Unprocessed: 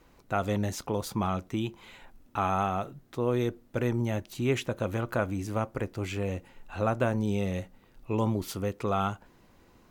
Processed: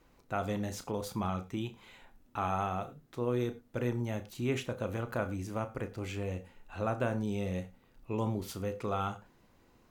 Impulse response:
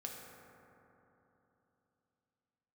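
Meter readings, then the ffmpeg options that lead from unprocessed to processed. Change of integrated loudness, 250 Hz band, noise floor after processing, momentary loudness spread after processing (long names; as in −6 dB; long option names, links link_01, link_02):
−5.0 dB, −5.0 dB, −65 dBFS, 7 LU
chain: -filter_complex "[0:a]asplit=2[link_01][link_02];[1:a]atrim=start_sample=2205,afade=type=out:start_time=0.13:duration=0.01,atrim=end_sample=6174,adelay=33[link_03];[link_02][link_03]afir=irnorm=-1:irlink=0,volume=-6dB[link_04];[link_01][link_04]amix=inputs=2:normalize=0,volume=-5.5dB"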